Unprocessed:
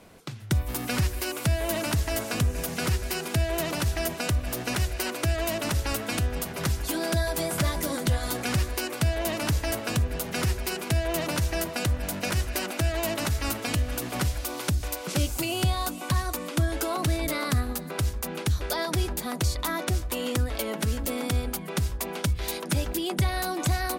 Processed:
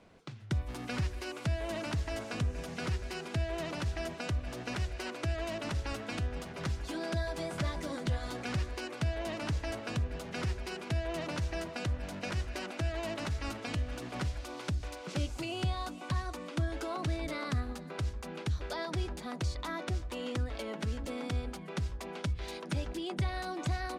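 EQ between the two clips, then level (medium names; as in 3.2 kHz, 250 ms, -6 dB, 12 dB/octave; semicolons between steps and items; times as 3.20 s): distance through air 87 m; -7.5 dB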